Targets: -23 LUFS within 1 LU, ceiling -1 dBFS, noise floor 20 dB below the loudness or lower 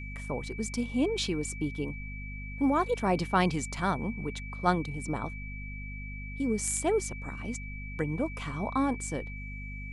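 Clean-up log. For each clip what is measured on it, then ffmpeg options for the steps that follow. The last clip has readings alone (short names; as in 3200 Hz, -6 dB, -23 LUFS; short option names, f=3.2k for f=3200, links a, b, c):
hum 50 Hz; harmonics up to 250 Hz; hum level -38 dBFS; steady tone 2300 Hz; tone level -43 dBFS; loudness -32.0 LUFS; peak -12.5 dBFS; loudness target -23.0 LUFS
-> -af "bandreject=f=50:t=h:w=6,bandreject=f=100:t=h:w=6,bandreject=f=150:t=h:w=6,bandreject=f=200:t=h:w=6,bandreject=f=250:t=h:w=6"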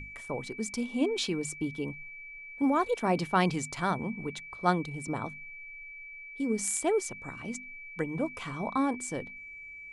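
hum none; steady tone 2300 Hz; tone level -43 dBFS
-> -af "bandreject=f=2.3k:w=30"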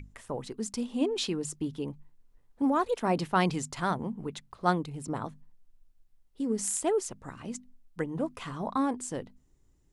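steady tone none; loudness -32.0 LUFS; peak -12.0 dBFS; loudness target -23.0 LUFS
-> -af "volume=9dB"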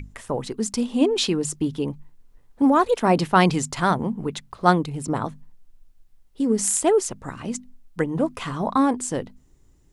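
loudness -23.0 LUFS; peak -3.0 dBFS; noise floor -57 dBFS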